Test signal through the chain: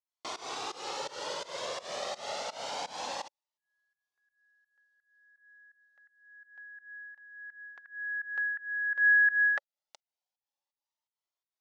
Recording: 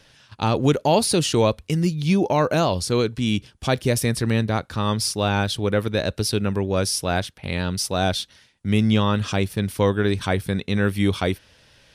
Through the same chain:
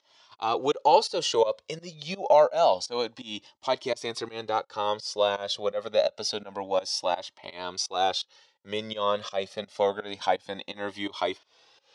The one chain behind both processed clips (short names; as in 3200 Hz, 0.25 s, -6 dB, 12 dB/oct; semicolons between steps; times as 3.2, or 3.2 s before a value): pump 84 bpm, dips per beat 2, -21 dB, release 0.201 s; speaker cabinet 500–6300 Hz, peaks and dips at 560 Hz +7 dB, 860 Hz +6 dB, 1600 Hz -8 dB, 2400 Hz -6 dB; cascading flanger rising 0.27 Hz; gain +2.5 dB